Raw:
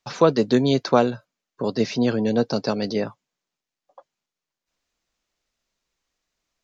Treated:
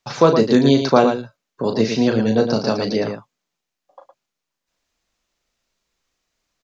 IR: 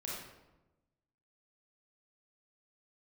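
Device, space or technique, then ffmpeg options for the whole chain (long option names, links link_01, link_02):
slapback doubling: -filter_complex "[0:a]asplit=3[link_01][link_02][link_03];[link_02]adelay=36,volume=-7dB[link_04];[link_03]adelay=112,volume=-7dB[link_05];[link_01][link_04][link_05]amix=inputs=3:normalize=0,volume=3dB"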